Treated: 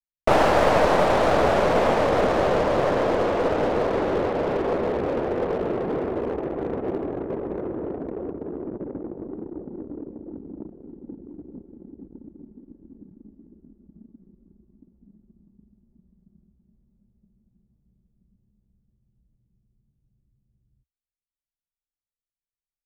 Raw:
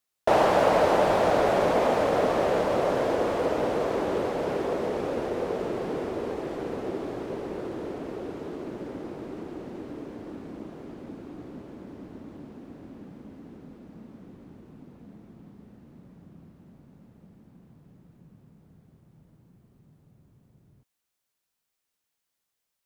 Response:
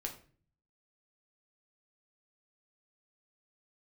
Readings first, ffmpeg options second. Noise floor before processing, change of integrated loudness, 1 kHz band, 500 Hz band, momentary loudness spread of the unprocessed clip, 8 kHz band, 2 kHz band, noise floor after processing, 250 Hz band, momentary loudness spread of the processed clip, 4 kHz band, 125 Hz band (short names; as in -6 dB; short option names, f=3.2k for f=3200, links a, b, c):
-82 dBFS, +3.5 dB, +3.0 dB, +3.0 dB, 22 LU, n/a, +4.5 dB, under -85 dBFS, +3.5 dB, 20 LU, +3.5 dB, +5.0 dB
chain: -af "equalizer=f=68:t=o:w=0.44:g=6,anlmdn=6.31,aeval=exprs='clip(val(0),-1,0.0473)':c=same,volume=5dB"